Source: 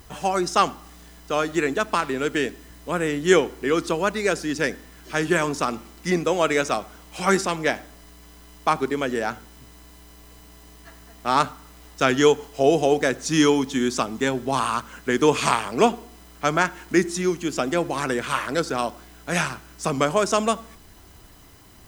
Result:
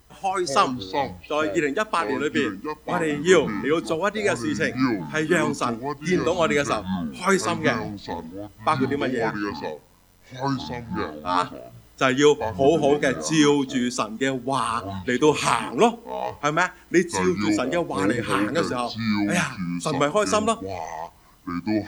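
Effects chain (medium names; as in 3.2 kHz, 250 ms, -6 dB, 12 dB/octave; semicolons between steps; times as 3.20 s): 9.31–11.43 s: robot voice 89.7 Hz; ever faster or slower copies 146 ms, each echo -6 st, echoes 2, each echo -6 dB; spectral noise reduction 9 dB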